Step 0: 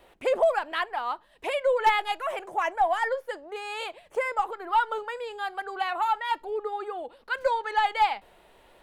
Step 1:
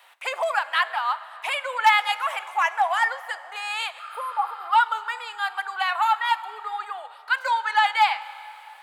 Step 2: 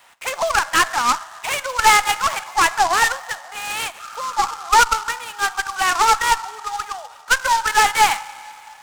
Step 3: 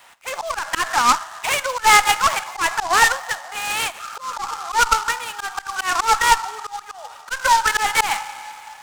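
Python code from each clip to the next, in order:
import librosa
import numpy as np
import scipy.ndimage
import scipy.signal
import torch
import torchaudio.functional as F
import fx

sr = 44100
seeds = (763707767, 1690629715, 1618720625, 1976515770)

y1 = fx.spec_repair(x, sr, seeds[0], start_s=4.02, length_s=0.63, low_hz=1200.0, high_hz=8900.0, source='after')
y1 = scipy.signal.sosfilt(scipy.signal.butter(4, 910.0, 'highpass', fs=sr, output='sos'), y1)
y1 = fx.rev_plate(y1, sr, seeds[1], rt60_s=3.3, hf_ratio=0.75, predelay_ms=0, drr_db=14.0)
y1 = y1 * 10.0 ** (7.5 / 20.0)
y2 = fx.dynamic_eq(y1, sr, hz=1300.0, q=1.5, threshold_db=-31.0, ratio=4.0, max_db=5)
y2 = fx.tube_stage(y2, sr, drive_db=12.0, bias=0.65)
y2 = fx.noise_mod_delay(y2, sr, seeds[2], noise_hz=4800.0, depth_ms=0.039)
y2 = y2 * 10.0 ** (6.5 / 20.0)
y3 = fx.auto_swell(y2, sr, attack_ms=157.0)
y3 = y3 * 10.0 ** (2.5 / 20.0)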